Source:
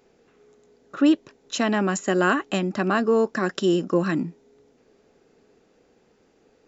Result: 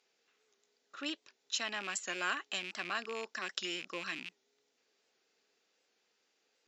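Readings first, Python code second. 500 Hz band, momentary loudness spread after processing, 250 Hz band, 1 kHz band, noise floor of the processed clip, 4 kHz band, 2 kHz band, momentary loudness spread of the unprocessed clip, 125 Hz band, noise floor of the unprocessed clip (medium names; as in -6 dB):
-22.5 dB, 7 LU, -26.5 dB, -15.0 dB, -79 dBFS, -4.0 dB, -9.5 dB, 7 LU, -30.0 dB, -62 dBFS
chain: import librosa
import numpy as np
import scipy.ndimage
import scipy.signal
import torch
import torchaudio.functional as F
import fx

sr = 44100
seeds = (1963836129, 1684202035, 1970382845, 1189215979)

y = fx.rattle_buzz(x, sr, strikes_db=-33.0, level_db=-24.0)
y = fx.bandpass_q(y, sr, hz=4300.0, q=0.91)
y = fx.record_warp(y, sr, rpm=78.0, depth_cents=100.0)
y = F.gain(torch.from_numpy(y), -3.5).numpy()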